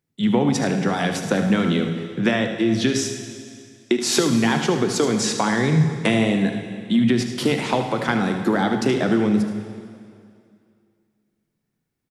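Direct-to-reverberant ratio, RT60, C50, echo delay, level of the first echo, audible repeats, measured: 4.5 dB, 2.3 s, 5.5 dB, 76 ms, -11.0 dB, 2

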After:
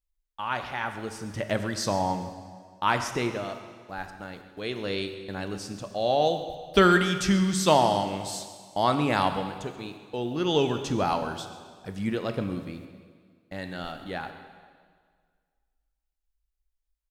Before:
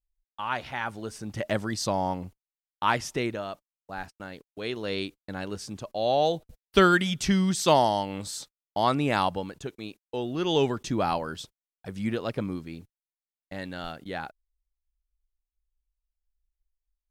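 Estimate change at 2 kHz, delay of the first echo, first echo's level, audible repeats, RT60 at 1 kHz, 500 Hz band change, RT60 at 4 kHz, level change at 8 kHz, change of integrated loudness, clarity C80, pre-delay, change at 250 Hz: +0.5 dB, 135 ms, -17.0 dB, 1, 1.8 s, +0.5 dB, 1.7 s, +1.0 dB, +0.5 dB, 9.0 dB, 6 ms, +1.0 dB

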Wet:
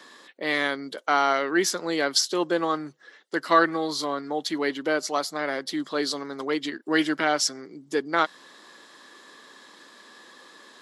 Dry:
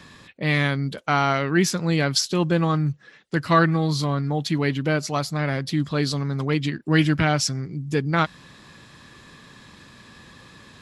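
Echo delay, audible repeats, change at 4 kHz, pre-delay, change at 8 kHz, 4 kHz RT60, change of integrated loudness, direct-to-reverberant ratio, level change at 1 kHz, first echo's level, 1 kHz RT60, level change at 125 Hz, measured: no echo, no echo, -0.5 dB, no reverb, 0.0 dB, no reverb, -3.0 dB, no reverb, 0.0 dB, no echo, no reverb, -24.0 dB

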